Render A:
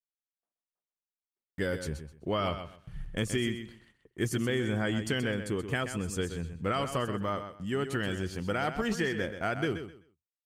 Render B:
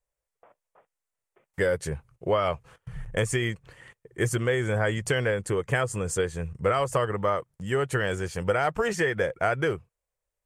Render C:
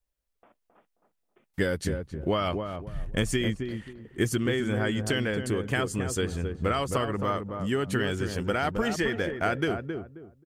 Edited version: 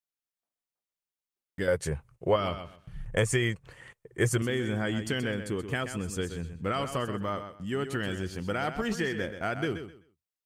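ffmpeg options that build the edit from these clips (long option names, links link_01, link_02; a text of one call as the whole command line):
ffmpeg -i take0.wav -i take1.wav -filter_complex "[1:a]asplit=2[link_01][link_02];[0:a]asplit=3[link_03][link_04][link_05];[link_03]atrim=end=1.682[link_06];[link_01]atrim=start=1.678:end=2.362[link_07];[link_04]atrim=start=2.358:end=3.062[link_08];[link_02]atrim=start=3.058:end=4.422[link_09];[link_05]atrim=start=4.418[link_10];[link_06][link_07]acrossfade=duration=0.004:curve1=hsin:curve2=hsin[link_11];[link_11][link_08]acrossfade=duration=0.004:curve1=hsin:curve2=hsin[link_12];[link_12][link_09]acrossfade=duration=0.004:curve1=hsin:curve2=hsin[link_13];[link_13][link_10]acrossfade=duration=0.004:curve1=hsin:curve2=hsin" out.wav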